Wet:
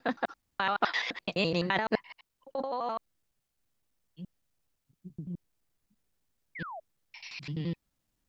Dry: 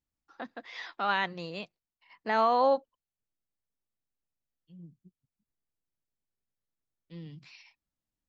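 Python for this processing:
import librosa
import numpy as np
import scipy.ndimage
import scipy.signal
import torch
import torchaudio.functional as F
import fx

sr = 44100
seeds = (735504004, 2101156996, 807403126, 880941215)

y = fx.block_reorder(x, sr, ms=85.0, group=7)
y = fx.over_compress(y, sr, threshold_db=-34.0, ratio=-1.0)
y = fx.spec_paint(y, sr, seeds[0], shape='fall', start_s=6.55, length_s=0.25, low_hz=600.0, high_hz=2300.0, level_db=-46.0)
y = F.gain(torch.from_numpy(y), 5.0).numpy()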